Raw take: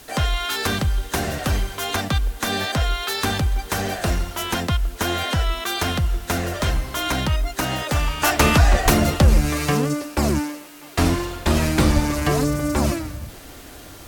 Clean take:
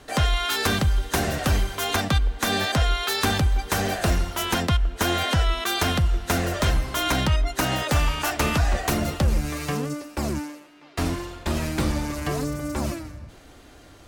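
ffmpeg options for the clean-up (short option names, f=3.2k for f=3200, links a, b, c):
-filter_complex "[0:a]asplit=3[a][b][c];[a]afade=t=out:st=8.84:d=0.02[d];[b]highpass=f=140:w=0.5412,highpass=f=140:w=1.3066,afade=t=in:st=8.84:d=0.02,afade=t=out:st=8.96:d=0.02[e];[c]afade=t=in:st=8.96:d=0.02[f];[d][e][f]amix=inputs=3:normalize=0,asplit=3[g][h][i];[g]afade=t=out:st=11.95:d=0.02[j];[h]highpass=f=140:w=0.5412,highpass=f=140:w=1.3066,afade=t=in:st=11.95:d=0.02,afade=t=out:st=12.07:d=0.02[k];[i]afade=t=in:st=12.07:d=0.02[l];[j][k][l]amix=inputs=3:normalize=0,agate=range=-21dB:threshold=-29dB,asetnsamples=n=441:p=0,asendcmd='8.22 volume volume -7dB',volume=0dB"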